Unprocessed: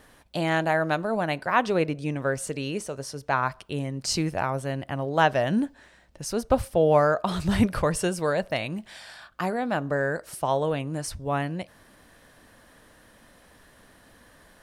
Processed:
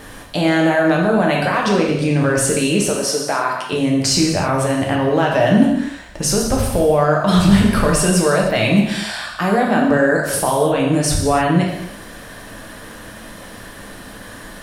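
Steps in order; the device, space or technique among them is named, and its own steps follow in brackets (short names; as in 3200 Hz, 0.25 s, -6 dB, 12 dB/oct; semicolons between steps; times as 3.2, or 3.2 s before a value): loud club master (compressor 2:1, threshold -26 dBFS, peak gain reduction 7 dB; hard clip -15 dBFS, distortion -39 dB; maximiser +24.5 dB); 2.89–3.73 HPF 280 Hz 12 dB/oct; non-linear reverb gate 0.34 s falling, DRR -1.5 dB; gain -9.5 dB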